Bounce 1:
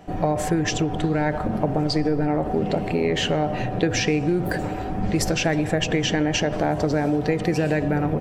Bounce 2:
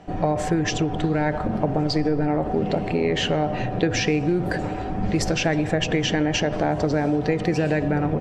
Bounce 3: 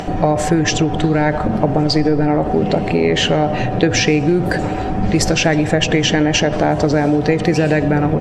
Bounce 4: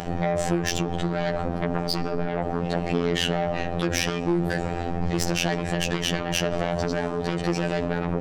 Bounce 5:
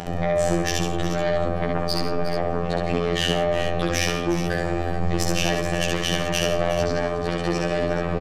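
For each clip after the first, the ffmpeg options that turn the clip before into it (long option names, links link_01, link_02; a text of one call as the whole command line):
ffmpeg -i in.wav -af "lowpass=7000" out.wav
ffmpeg -i in.wav -af "highshelf=frequency=5100:gain=4.5,acompressor=mode=upward:threshold=-23dB:ratio=2.5,volume=7dB" out.wav
ffmpeg -i in.wav -af "aeval=exprs='0.891*sin(PI/2*2.82*val(0)/0.891)':channel_layout=same,afftfilt=real='hypot(re,im)*cos(PI*b)':imag='0':win_size=2048:overlap=0.75,volume=-16dB" out.wav
ffmpeg -i in.wav -filter_complex "[0:a]asplit=2[link_01][link_02];[link_02]aecho=0:1:68|136|169|360|427:0.708|0.211|0.168|0.224|0.266[link_03];[link_01][link_03]amix=inputs=2:normalize=0,aresample=32000,aresample=44100" out.wav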